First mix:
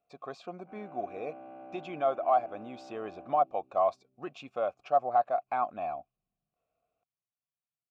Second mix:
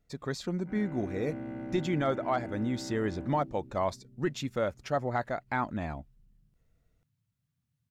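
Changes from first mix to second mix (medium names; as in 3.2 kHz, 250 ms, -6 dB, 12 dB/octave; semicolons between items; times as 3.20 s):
speech -10.0 dB; first sound -8.0 dB; master: remove vowel filter a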